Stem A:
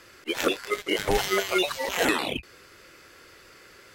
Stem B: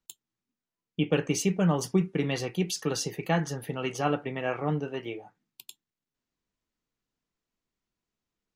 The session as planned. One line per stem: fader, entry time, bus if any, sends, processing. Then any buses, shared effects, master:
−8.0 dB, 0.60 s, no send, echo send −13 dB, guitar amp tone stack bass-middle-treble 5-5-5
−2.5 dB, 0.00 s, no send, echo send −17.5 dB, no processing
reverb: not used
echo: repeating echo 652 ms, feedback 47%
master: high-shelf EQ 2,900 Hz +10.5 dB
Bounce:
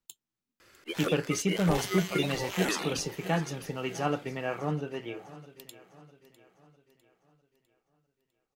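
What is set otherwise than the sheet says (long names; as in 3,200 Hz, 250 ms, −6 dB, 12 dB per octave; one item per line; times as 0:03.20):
stem A: missing guitar amp tone stack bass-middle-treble 5-5-5
master: missing high-shelf EQ 2,900 Hz +10.5 dB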